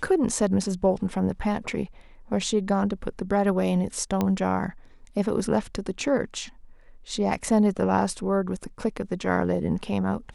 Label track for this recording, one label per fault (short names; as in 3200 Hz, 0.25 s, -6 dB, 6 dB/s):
4.210000	4.210000	pop -12 dBFS